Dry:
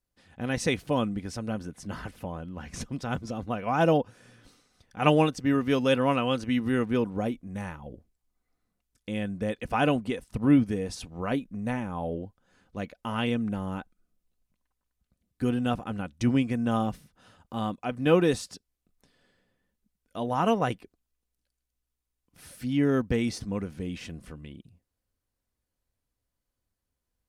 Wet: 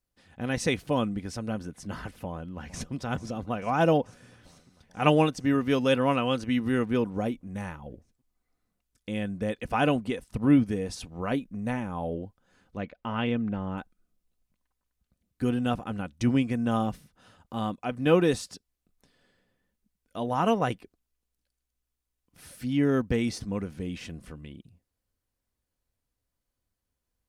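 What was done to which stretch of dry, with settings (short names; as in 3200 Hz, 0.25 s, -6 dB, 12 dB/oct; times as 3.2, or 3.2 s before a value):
2.25–2.93 echo throw 0.44 s, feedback 80%, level -17 dB
12.77–13.78 LPF 3200 Hz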